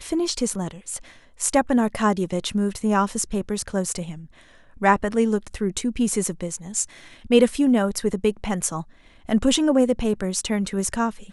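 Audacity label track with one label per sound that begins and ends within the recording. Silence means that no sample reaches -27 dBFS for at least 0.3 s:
1.410000	4.120000	sound
4.820000	6.840000	sound
7.310000	8.820000	sound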